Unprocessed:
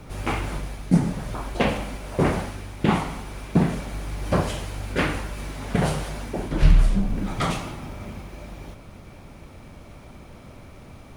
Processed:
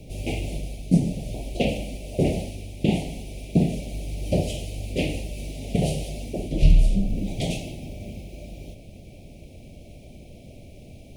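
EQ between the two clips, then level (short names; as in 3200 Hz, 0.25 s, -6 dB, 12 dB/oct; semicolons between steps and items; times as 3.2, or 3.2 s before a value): Chebyshev band-stop 670–2500 Hz, order 3; 0.0 dB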